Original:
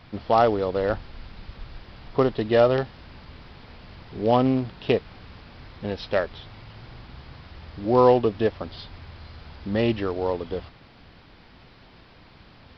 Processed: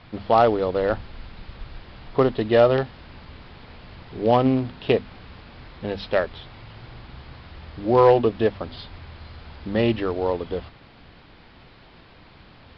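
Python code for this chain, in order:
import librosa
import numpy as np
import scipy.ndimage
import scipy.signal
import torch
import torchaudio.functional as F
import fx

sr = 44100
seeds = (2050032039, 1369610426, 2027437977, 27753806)

y = np.clip(x, -10.0 ** (-8.0 / 20.0), 10.0 ** (-8.0 / 20.0))
y = scipy.signal.sosfilt(scipy.signal.butter(4, 4800.0, 'lowpass', fs=sr, output='sos'), y)
y = fx.hum_notches(y, sr, base_hz=50, count=5)
y = y * 10.0 ** (2.0 / 20.0)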